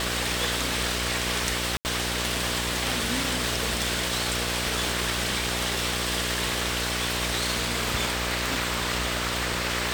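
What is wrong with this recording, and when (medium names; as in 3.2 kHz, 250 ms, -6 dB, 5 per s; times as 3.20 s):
buzz 60 Hz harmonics 11 -33 dBFS
1.77–1.85 s: dropout 79 ms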